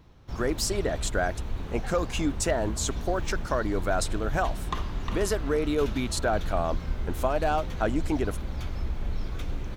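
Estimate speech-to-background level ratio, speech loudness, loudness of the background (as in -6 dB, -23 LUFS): 6.0 dB, -29.5 LUFS, -35.5 LUFS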